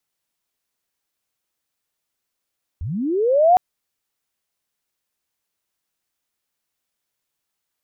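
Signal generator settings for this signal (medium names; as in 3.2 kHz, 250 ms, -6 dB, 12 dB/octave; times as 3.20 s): sweep linear 66 Hz -> 750 Hz -24.5 dBFS -> -8.5 dBFS 0.76 s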